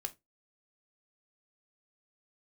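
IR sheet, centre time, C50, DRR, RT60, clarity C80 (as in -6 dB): 5 ms, 21.0 dB, 8.0 dB, 0.20 s, 30.0 dB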